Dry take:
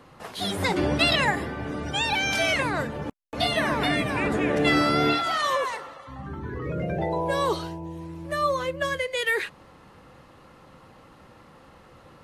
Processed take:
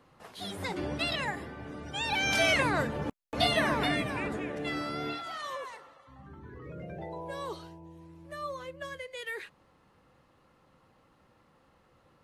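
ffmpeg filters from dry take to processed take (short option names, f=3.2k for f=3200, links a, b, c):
-af "volume=-1.5dB,afade=t=in:st=1.91:d=0.48:silence=0.354813,afade=t=out:st=3.44:d=1.09:silence=0.251189"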